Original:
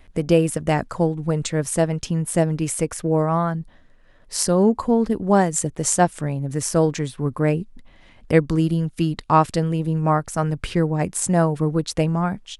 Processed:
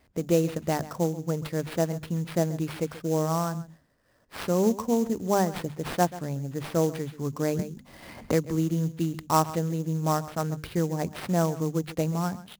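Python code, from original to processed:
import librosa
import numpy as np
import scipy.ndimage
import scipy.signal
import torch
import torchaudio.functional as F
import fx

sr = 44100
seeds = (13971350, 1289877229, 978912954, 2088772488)

p1 = scipy.signal.sosfilt(scipy.signal.butter(2, 69.0, 'highpass', fs=sr, output='sos'), x)
p2 = fx.high_shelf(p1, sr, hz=3100.0, db=-9.0)
p3 = fx.hum_notches(p2, sr, base_hz=50, count=5)
p4 = fx.sample_hold(p3, sr, seeds[0], rate_hz=6800.0, jitter_pct=20)
p5 = p4 + fx.echo_single(p4, sr, ms=134, db=-16.5, dry=0)
p6 = fx.band_squash(p5, sr, depth_pct=70, at=(7.59, 8.92))
y = p6 * librosa.db_to_amplitude(-6.0)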